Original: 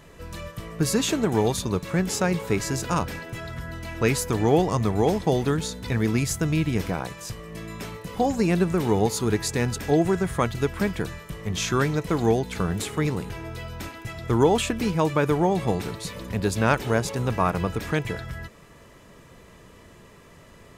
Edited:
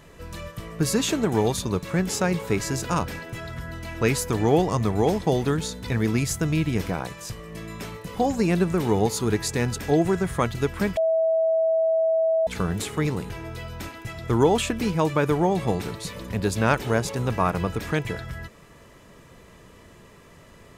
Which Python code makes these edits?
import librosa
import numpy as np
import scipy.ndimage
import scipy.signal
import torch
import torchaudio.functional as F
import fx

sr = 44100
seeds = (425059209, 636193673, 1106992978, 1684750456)

y = fx.edit(x, sr, fx.bleep(start_s=10.97, length_s=1.5, hz=649.0, db=-18.0), tone=tone)